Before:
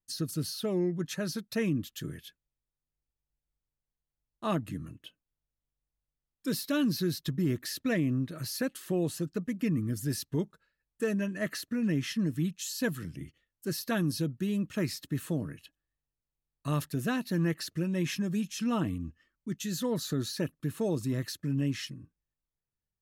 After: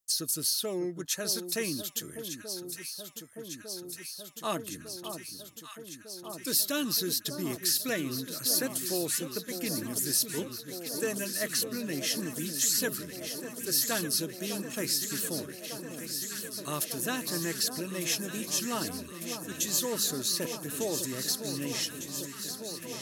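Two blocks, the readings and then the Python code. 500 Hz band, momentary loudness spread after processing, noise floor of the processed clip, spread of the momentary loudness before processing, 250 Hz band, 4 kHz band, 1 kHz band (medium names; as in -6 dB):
-0.5 dB, 12 LU, -47 dBFS, 11 LU, -5.5 dB, +8.5 dB, +1.5 dB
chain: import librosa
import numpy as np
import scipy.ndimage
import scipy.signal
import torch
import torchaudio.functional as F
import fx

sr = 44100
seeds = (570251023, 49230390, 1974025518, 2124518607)

y = fx.bass_treble(x, sr, bass_db=-13, treble_db=13)
y = fx.echo_alternate(y, sr, ms=601, hz=1200.0, feedback_pct=90, wet_db=-8.5)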